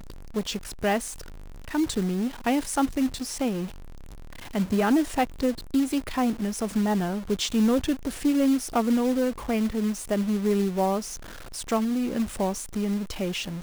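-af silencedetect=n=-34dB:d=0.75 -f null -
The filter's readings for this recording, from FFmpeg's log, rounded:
silence_start: 3.67
silence_end: 4.55 | silence_duration: 0.88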